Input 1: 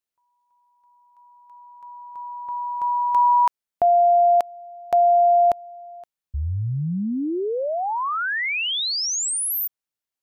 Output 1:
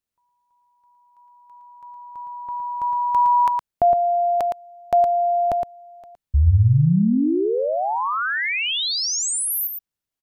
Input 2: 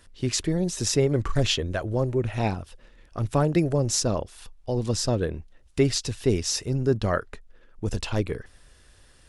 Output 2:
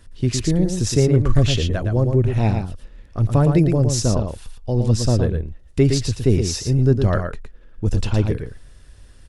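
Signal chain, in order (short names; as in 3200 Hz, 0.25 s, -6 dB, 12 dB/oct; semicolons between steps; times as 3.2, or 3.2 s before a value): low shelf 250 Hz +11 dB; echo 0.114 s -6 dB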